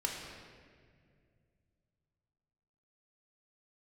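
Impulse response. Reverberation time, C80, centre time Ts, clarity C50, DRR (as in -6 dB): 2.1 s, 3.5 dB, 79 ms, 2.0 dB, -1.0 dB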